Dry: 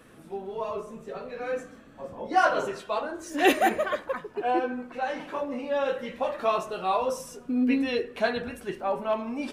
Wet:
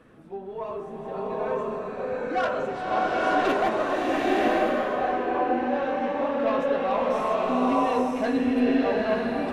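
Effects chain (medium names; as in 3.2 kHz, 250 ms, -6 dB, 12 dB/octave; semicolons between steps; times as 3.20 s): low-pass 1.7 kHz 6 dB/octave; saturation -21 dBFS, distortion -13 dB; swelling reverb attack 950 ms, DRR -5.5 dB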